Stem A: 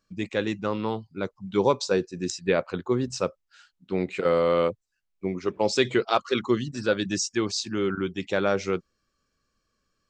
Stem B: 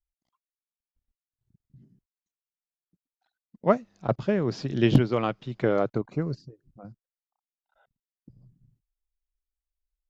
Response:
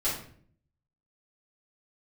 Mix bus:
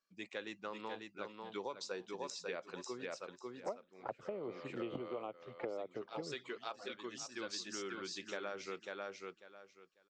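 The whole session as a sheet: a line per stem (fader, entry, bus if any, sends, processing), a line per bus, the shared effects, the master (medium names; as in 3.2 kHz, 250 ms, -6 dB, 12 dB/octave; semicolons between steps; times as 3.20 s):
-12.0 dB, 0.00 s, no send, echo send -5.5 dB, frequency weighting A; auto duck -14 dB, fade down 0.85 s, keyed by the second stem
-2.5 dB, 0.00 s, no send, no echo send, touch-sensitive flanger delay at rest 8.1 ms, full sweep at -22.5 dBFS; three-band isolator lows -21 dB, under 370 Hz, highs -23 dB, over 2.5 kHz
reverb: none
echo: feedback delay 545 ms, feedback 20%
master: compression 12:1, threshold -38 dBFS, peak gain reduction 17.5 dB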